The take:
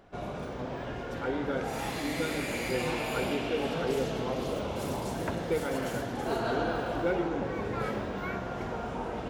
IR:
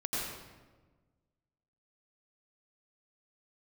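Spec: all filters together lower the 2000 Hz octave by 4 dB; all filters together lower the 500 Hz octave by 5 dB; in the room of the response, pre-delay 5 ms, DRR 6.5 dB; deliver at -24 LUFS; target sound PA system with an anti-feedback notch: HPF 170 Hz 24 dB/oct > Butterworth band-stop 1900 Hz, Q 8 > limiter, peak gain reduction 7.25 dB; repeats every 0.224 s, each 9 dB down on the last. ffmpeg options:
-filter_complex "[0:a]equalizer=f=500:t=o:g=-6,equalizer=f=2k:t=o:g=-4.5,aecho=1:1:224|448|672|896:0.355|0.124|0.0435|0.0152,asplit=2[a][b];[1:a]atrim=start_sample=2205,adelay=5[c];[b][c]afir=irnorm=-1:irlink=0,volume=-12dB[d];[a][d]amix=inputs=2:normalize=0,highpass=f=170:w=0.5412,highpass=f=170:w=1.3066,asuperstop=centerf=1900:order=8:qfactor=8,volume=12dB,alimiter=limit=-14.5dB:level=0:latency=1"

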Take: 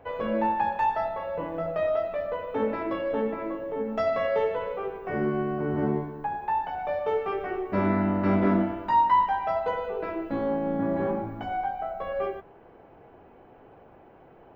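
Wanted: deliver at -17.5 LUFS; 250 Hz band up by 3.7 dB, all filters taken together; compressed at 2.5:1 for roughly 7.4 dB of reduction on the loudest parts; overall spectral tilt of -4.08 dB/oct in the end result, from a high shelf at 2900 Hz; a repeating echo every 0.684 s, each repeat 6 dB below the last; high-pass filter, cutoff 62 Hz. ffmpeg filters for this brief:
-af "highpass=62,equalizer=f=250:t=o:g=5,highshelf=f=2.9k:g=-7.5,acompressor=threshold=-27dB:ratio=2.5,aecho=1:1:684|1368|2052|2736|3420|4104:0.501|0.251|0.125|0.0626|0.0313|0.0157,volume=12dB"

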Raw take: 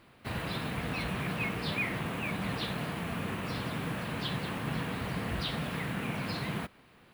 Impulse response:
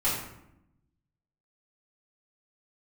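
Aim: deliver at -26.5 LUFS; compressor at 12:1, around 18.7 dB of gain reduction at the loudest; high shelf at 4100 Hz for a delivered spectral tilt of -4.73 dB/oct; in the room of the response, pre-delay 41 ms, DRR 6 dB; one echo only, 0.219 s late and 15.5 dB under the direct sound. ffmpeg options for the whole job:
-filter_complex "[0:a]highshelf=f=4.1k:g=6,acompressor=threshold=-48dB:ratio=12,aecho=1:1:219:0.168,asplit=2[a][b];[1:a]atrim=start_sample=2205,adelay=41[c];[b][c]afir=irnorm=-1:irlink=0,volume=-16.5dB[d];[a][d]amix=inputs=2:normalize=0,volume=23dB"

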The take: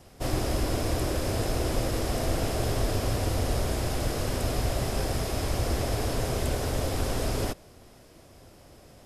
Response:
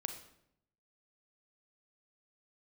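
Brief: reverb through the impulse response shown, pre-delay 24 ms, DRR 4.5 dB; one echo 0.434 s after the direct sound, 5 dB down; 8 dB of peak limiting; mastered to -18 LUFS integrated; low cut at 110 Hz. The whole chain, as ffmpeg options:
-filter_complex "[0:a]highpass=110,alimiter=level_in=1.5dB:limit=-24dB:level=0:latency=1,volume=-1.5dB,aecho=1:1:434:0.562,asplit=2[a][b];[1:a]atrim=start_sample=2205,adelay=24[c];[b][c]afir=irnorm=-1:irlink=0,volume=-4dB[d];[a][d]amix=inputs=2:normalize=0,volume=14.5dB"

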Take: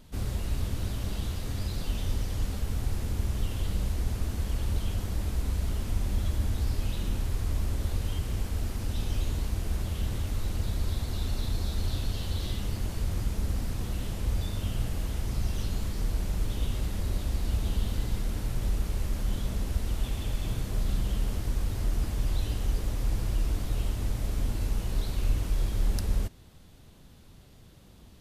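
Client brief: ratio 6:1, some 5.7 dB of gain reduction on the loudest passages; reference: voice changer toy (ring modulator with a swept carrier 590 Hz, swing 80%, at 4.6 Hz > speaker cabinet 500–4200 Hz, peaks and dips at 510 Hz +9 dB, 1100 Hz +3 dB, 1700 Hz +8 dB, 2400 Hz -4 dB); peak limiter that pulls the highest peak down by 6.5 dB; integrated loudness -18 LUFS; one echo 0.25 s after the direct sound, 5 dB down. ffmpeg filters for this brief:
-af "acompressor=threshold=-28dB:ratio=6,alimiter=level_in=2dB:limit=-24dB:level=0:latency=1,volume=-2dB,aecho=1:1:250:0.562,aeval=exprs='val(0)*sin(2*PI*590*n/s+590*0.8/4.6*sin(2*PI*4.6*n/s))':c=same,highpass=500,equalizer=f=510:t=q:w=4:g=9,equalizer=f=1.1k:t=q:w=4:g=3,equalizer=f=1.7k:t=q:w=4:g=8,equalizer=f=2.4k:t=q:w=4:g=-4,lowpass=f=4.2k:w=0.5412,lowpass=f=4.2k:w=1.3066,volume=16.5dB"

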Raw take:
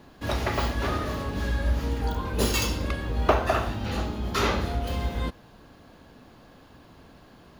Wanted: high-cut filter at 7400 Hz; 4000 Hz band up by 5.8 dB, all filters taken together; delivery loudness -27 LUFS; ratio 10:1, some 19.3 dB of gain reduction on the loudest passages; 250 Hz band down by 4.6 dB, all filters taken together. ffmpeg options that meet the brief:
-af "lowpass=7.4k,equalizer=f=250:t=o:g=-6,equalizer=f=4k:t=o:g=7.5,acompressor=threshold=-35dB:ratio=10,volume=12.5dB"

